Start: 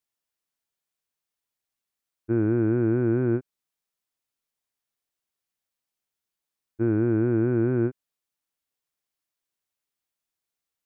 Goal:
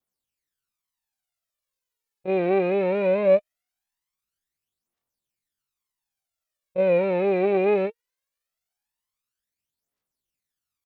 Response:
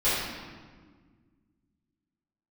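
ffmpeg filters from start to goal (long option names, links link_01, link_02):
-af "adynamicequalizer=threshold=0.00355:dfrequency=1200:dqfactor=1.5:tfrequency=1200:tqfactor=1.5:attack=5:release=100:ratio=0.375:range=3:mode=boostabove:tftype=bell,aphaser=in_gain=1:out_gain=1:delay=4.3:decay=0.66:speed=0.2:type=triangular,asetrate=72056,aresample=44100,atempo=0.612027"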